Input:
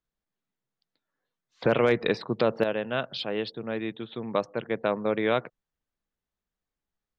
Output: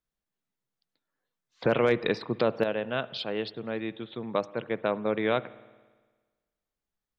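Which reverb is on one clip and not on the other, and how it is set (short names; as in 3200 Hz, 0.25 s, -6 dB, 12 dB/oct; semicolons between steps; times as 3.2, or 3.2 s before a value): spring tank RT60 1.4 s, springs 56 ms, chirp 45 ms, DRR 18.5 dB; gain -1.5 dB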